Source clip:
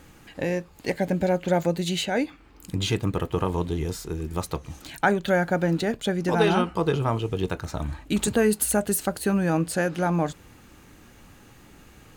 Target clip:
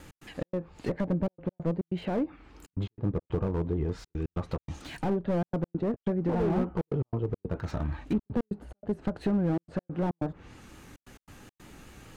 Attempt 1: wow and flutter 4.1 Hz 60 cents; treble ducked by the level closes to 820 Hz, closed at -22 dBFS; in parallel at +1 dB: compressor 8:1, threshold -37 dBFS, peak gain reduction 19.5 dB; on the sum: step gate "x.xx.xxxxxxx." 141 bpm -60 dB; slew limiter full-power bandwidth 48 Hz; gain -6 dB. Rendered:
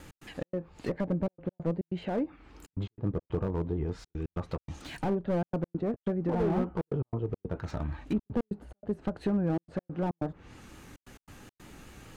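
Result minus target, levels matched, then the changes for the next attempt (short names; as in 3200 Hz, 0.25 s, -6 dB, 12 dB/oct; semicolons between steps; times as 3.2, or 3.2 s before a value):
compressor: peak gain reduction +8 dB
change: compressor 8:1, threshold -28 dBFS, peak gain reduction 12 dB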